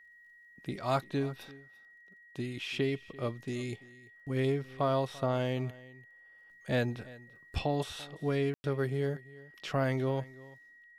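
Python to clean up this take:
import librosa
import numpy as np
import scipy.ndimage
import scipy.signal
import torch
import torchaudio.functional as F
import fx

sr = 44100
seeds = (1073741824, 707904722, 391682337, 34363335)

y = fx.fix_declick_ar(x, sr, threshold=6.5)
y = fx.notch(y, sr, hz=1900.0, q=30.0)
y = fx.fix_ambience(y, sr, seeds[0], print_start_s=0.05, print_end_s=0.55, start_s=8.54, end_s=8.64)
y = fx.fix_echo_inverse(y, sr, delay_ms=340, level_db=-20.5)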